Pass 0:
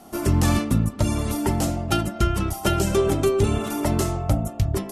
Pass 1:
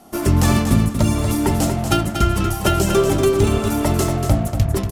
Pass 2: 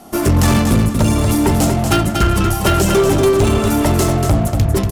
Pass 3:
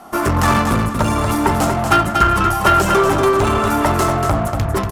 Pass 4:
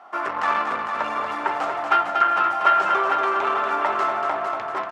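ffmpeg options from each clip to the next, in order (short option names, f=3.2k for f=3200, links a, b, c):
-filter_complex "[0:a]asplit=2[a][b];[b]acrusher=bits=4:mix=0:aa=0.5,volume=-4.5dB[c];[a][c]amix=inputs=2:normalize=0,aecho=1:1:237|474|711:0.422|0.0928|0.0204"
-af "asoftclip=type=tanh:threshold=-14dB,volume=6.5dB"
-af "equalizer=f=1.2k:t=o:w=1.7:g=13.5,volume=-5.5dB"
-af "highpass=740,lowpass=2.4k,aecho=1:1:454|908|1362|1816|2270:0.447|0.188|0.0788|0.0331|0.0139,volume=-3.5dB"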